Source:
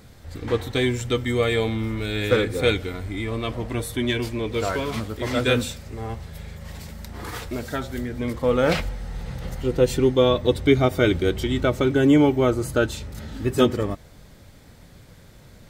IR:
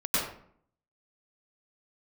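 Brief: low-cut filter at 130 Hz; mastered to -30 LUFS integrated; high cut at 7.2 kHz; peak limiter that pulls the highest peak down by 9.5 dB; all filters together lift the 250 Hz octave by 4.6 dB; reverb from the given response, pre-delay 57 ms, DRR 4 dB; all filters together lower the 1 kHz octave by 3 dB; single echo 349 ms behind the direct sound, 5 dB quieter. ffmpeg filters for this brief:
-filter_complex "[0:a]highpass=130,lowpass=7200,equalizer=f=250:t=o:g=6,equalizer=f=1000:t=o:g=-4.5,alimiter=limit=0.237:level=0:latency=1,aecho=1:1:349:0.562,asplit=2[s0][s1];[1:a]atrim=start_sample=2205,adelay=57[s2];[s1][s2]afir=irnorm=-1:irlink=0,volume=0.188[s3];[s0][s3]amix=inputs=2:normalize=0,volume=0.376"

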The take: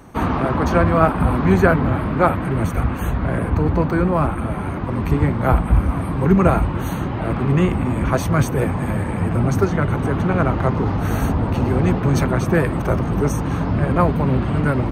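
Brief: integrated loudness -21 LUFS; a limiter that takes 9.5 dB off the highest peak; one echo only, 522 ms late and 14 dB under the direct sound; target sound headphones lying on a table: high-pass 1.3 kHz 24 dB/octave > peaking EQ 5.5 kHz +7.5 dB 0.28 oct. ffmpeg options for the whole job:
-af "alimiter=limit=0.282:level=0:latency=1,highpass=f=1300:w=0.5412,highpass=f=1300:w=1.3066,equalizer=f=5500:t=o:w=0.28:g=7.5,aecho=1:1:522:0.2,volume=4.22"

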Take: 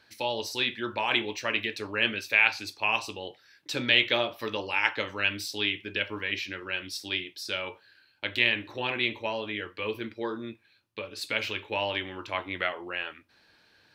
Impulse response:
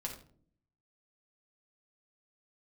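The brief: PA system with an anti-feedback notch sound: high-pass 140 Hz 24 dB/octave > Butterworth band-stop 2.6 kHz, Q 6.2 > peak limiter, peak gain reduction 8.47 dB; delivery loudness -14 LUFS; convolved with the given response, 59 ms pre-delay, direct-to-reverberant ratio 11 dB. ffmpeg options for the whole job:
-filter_complex "[0:a]asplit=2[s0][s1];[1:a]atrim=start_sample=2205,adelay=59[s2];[s1][s2]afir=irnorm=-1:irlink=0,volume=0.299[s3];[s0][s3]amix=inputs=2:normalize=0,highpass=f=140:w=0.5412,highpass=f=140:w=1.3066,asuperstop=centerf=2600:order=8:qfactor=6.2,volume=7.94,alimiter=limit=1:level=0:latency=1"

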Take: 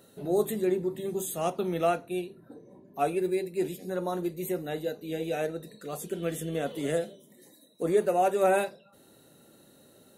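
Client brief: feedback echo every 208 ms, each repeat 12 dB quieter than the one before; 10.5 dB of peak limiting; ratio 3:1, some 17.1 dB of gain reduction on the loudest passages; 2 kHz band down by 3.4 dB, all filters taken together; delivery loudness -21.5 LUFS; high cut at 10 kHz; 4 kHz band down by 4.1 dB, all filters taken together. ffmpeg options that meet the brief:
-af "lowpass=10000,equalizer=f=2000:t=o:g=-4,equalizer=f=4000:t=o:g=-3.5,acompressor=threshold=0.00631:ratio=3,alimiter=level_in=5.96:limit=0.0631:level=0:latency=1,volume=0.168,aecho=1:1:208|416|624:0.251|0.0628|0.0157,volume=23.7"

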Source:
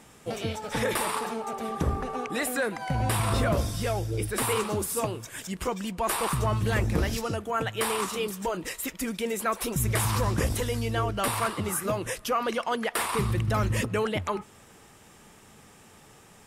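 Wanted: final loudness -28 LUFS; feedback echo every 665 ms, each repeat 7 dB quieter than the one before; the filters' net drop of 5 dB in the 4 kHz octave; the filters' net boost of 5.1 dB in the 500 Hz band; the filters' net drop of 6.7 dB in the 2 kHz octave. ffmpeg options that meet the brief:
-af "equalizer=f=500:t=o:g=6.5,equalizer=f=2000:t=o:g=-8.5,equalizer=f=4000:t=o:g=-3.5,aecho=1:1:665|1330|1995|2660|3325:0.447|0.201|0.0905|0.0407|0.0183,volume=0.841"

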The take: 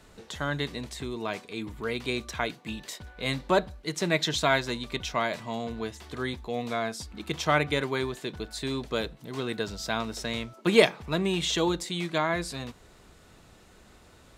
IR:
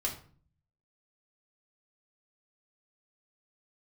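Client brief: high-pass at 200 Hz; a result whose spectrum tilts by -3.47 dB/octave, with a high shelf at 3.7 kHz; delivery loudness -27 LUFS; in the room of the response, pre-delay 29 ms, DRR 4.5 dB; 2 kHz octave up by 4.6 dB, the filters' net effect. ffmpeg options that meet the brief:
-filter_complex "[0:a]highpass=200,equalizer=f=2000:t=o:g=6.5,highshelf=f=3700:g=-3,asplit=2[s0][s1];[1:a]atrim=start_sample=2205,adelay=29[s2];[s1][s2]afir=irnorm=-1:irlink=0,volume=0.398[s3];[s0][s3]amix=inputs=2:normalize=0"

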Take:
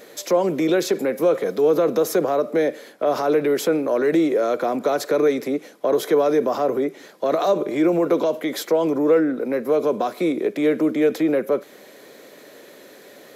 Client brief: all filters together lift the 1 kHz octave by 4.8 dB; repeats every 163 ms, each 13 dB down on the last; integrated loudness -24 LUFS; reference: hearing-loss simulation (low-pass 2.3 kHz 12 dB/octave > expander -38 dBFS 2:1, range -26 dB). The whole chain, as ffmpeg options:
-af "lowpass=2300,equalizer=f=1000:t=o:g=7,aecho=1:1:163|326|489:0.224|0.0493|0.0108,agate=range=0.0501:threshold=0.0126:ratio=2,volume=0.562"

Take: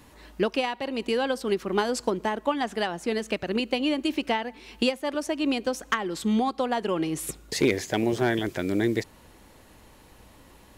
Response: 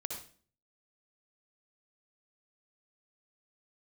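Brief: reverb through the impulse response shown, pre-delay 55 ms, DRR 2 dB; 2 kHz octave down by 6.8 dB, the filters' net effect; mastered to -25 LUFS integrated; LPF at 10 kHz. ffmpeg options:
-filter_complex "[0:a]lowpass=10000,equalizer=f=2000:t=o:g=-9,asplit=2[s0][s1];[1:a]atrim=start_sample=2205,adelay=55[s2];[s1][s2]afir=irnorm=-1:irlink=0,volume=0.794[s3];[s0][s3]amix=inputs=2:normalize=0,volume=1.06"

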